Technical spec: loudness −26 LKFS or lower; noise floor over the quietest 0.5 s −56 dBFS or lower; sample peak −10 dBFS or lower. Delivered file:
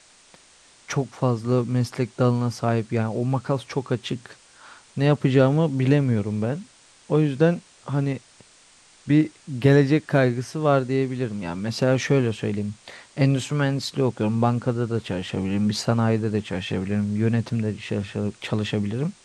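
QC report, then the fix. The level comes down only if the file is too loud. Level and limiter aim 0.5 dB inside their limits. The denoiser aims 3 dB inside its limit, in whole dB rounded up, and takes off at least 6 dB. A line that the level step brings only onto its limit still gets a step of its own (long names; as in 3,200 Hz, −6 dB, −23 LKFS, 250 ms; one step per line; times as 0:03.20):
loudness −23.5 LKFS: out of spec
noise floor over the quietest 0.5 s −54 dBFS: out of spec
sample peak −5.0 dBFS: out of spec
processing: level −3 dB
brickwall limiter −10.5 dBFS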